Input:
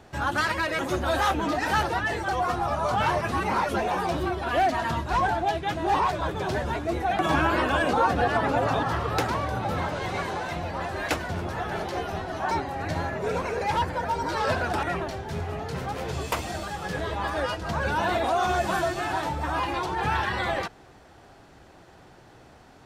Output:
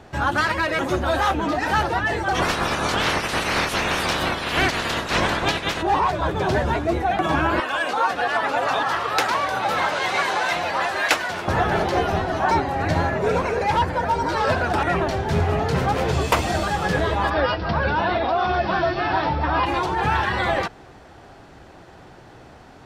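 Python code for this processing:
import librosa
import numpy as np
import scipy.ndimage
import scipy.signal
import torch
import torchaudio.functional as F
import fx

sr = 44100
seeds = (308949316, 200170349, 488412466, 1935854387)

y = fx.spec_clip(x, sr, under_db=25, at=(2.34, 5.81), fade=0.02)
y = fx.highpass(y, sr, hz=1400.0, slope=6, at=(7.6, 11.48))
y = fx.steep_lowpass(y, sr, hz=5500.0, slope=96, at=(17.29, 19.65), fade=0.02)
y = fx.high_shelf(y, sr, hz=6300.0, db=-6.5)
y = fx.rider(y, sr, range_db=10, speed_s=0.5)
y = F.gain(torch.from_numpy(y), 6.0).numpy()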